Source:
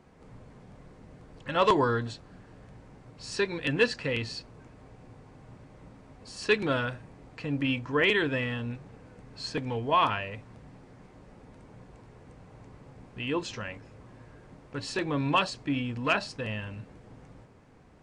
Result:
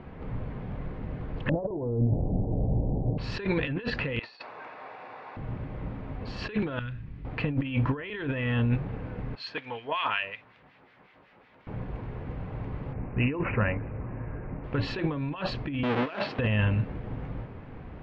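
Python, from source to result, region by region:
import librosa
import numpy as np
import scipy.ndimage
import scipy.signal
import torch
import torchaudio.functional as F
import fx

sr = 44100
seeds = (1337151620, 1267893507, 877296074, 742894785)

y = fx.chain(x, sr, fx.steep_lowpass(hz=780.0, slope=48),
    fx.over_compress(threshold_db=-39.0, ratio=-1.0), at=(1.49, 3.18))
y = fx.chain(y, sr, fx.cheby1_bandpass(low_hz=800.0, high_hz=5500.0, order=2),
    fx.notch(hz=3100.0, q=10.0),
    fx.over_compress(threshold_db=-50.0, ratio=-1.0), at=(4.19, 5.37))
y = fx.chain(y, sr, fx.tone_stack(knobs='6-0-2'),
    fx.env_flatten(amount_pct=50), at=(6.79, 7.25))
y = fx.chain(y, sr, fx.bandpass_q(hz=4400.0, q=0.52),
    fx.harmonic_tremolo(hz=5.4, depth_pct=70, crossover_hz=1400.0), at=(9.35, 11.67))
y = fx.chain(y, sr, fx.high_shelf(hz=2200.0, db=-6.5),
    fx.resample_bad(factor=8, down='none', up='filtered'), at=(12.93, 14.64))
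y = fx.chain(y, sr, fx.halfwave_hold(),
    fx.highpass(hz=300.0, slope=12),
    fx.air_absorb(metres=74.0), at=(15.83, 16.39))
y = fx.over_compress(y, sr, threshold_db=-36.0, ratio=-1.0)
y = scipy.signal.sosfilt(scipy.signal.butter(4, 3200.0, 'lowpass', fs=sr, output='sos'), y)
y = fx.low_shelf(y, sr, hz=120.0, db=8.5)
y = y * librosa.db_to_amplitude(6.0)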